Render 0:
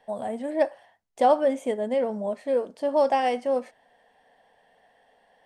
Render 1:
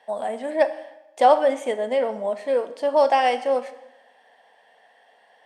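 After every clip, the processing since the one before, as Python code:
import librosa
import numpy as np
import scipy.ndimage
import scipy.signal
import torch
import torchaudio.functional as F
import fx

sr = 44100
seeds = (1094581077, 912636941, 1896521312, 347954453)

y = fx.weighting(x, sr, curve='A')
y = fx.rev_freeverb(y, sr, rt60_s=0.95, hf_ratio=0.95, predelay_ms=5, drr_db=13.0)
y = F.gain(torch.from_numpy(y), 5.5).numpy()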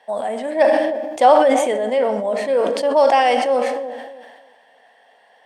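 y = fx.echo_wet_lowpass(x, sr, ms=307, feedback_pct=30, hz=480.0, wet_db=-12)
y = fx.sustainer(y, sr, db_per_s=36.0)
y = F.gain(torch.from_numpy(y), 3.0).numpy()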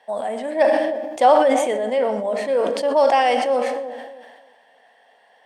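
y = x + 10.0 ** (-21.5 / 20.0) * np.pad(x, (int(117 * sr / 1000.0), 0))[:len(x)]
y = F.gain(torch.from_numpy(y), -2.0).numpy()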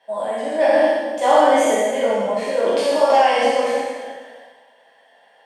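y = fx.spec_trails(x, sr, decay_s=1.28)
y = fx.rev_gated(y, sr, seeds[0], gate_ms=250, shape='falling', drr_db=-5.0)
y = F.gain(torch.from_numpy(y), -7.0).numpy()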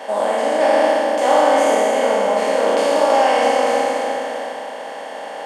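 y = fx.bin_compress(x, sr, power=0.4)
y = scipy.signal.sosfilt(scipy.signal.butter(2, 180.0, 'highpass', fs=sr, output='sos'), y)
y = F.gain(torch.from_numpy(y), -4.0).numpy()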